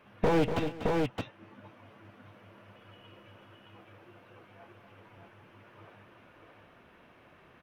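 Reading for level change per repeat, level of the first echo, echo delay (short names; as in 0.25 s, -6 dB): no steady repeat, -18.0 dB, 54 ms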